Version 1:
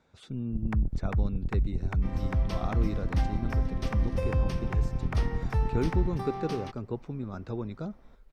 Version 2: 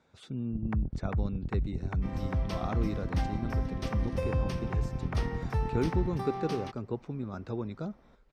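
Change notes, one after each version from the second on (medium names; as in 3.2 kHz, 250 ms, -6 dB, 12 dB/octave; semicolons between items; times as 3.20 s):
first sound: add low-pass 1.7 kHz 6 dB/octave; master: add high-pass 72 Hz 6 dB/octave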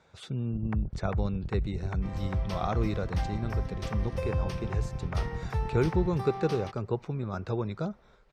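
speech +6.5 dB; master: add peaking EQ 260 Hz -9.5 dB 0.6 oct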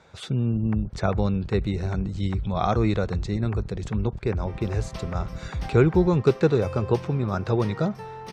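speech +8.0 dB; second sound: entry +2.45 s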